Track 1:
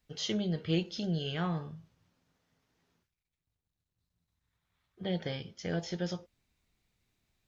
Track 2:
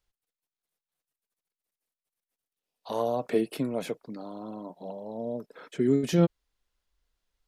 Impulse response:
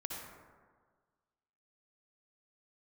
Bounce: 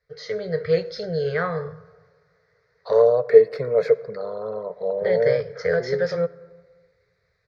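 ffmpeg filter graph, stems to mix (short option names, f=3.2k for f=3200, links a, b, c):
-filter_complex "[0:a]equalizer=f=220:t=o:w=1.6:g=-5,volume=0.5dB,asplit=2[a][b];[b]volume=-17dB[c];[1:a]volume=-1dB,afade=t=out:st=5.15:d=0.58:silence=0.237137,asplit=2[d][e];[e]volume=-16.5dB[f];[2:a]atrim=start_sample=2205[g];[c][f]amix=inputs=2:normalize=0[h];[h][g]afir=irnorm=-1:irlink=0[i];[a][d][i]amix=inputs=3:normalize=0,firequalizer=gain_entry='entry(140,0);entry(300,-28);entry(440,13);entry(820,-8);entry(1200,3);entry(2000,7);entry(2900,-22);entry(4300,0);entry(9000,-29)':delay=0.05:min_phase=1,dynaudnorm=f=260:g=3:m=9dB,highpass=60"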